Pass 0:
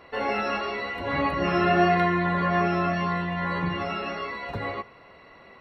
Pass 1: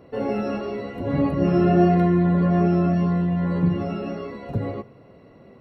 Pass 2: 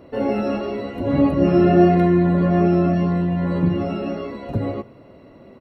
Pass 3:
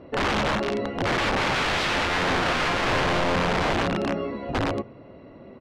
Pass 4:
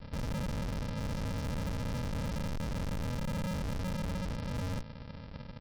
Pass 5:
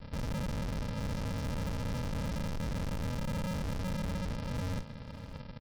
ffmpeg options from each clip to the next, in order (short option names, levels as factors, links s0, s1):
-af "equalizer=f=125:t=o:w=1:g=11,equalizer=f=250:t=o:w=1:g=7,equalizer=f=500:t=o:w=1:g=4,equalizer=f=1000:t=o:w=1:g=-7,equalizer=f=2000:t=o:w=1:g=-9,equalizer=f=4000:t=o:w=1:g=-8"
-af "aecho=1:1:3.3:0.3,volume=1.5"
-af "aeval=exprs='(mod(7.94*val(0)+1,2)-1)/7.94':c=same,lowpass=3800"
-af "aresample=11025,acrusher=samples=30:mix=1:aa=0.000001,aresample=44100,asoftclip=type=hard:threshold=0.0211"
-af "aecho=1:1:591:0.178"